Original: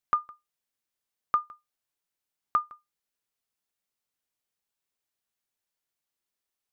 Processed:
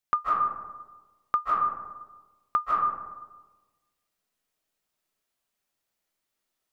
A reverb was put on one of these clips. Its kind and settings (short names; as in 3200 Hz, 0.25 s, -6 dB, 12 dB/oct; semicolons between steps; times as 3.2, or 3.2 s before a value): digital reverb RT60 1.3 s, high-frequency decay 0.35×, pre-delay 0.115 s, DRR -6 dB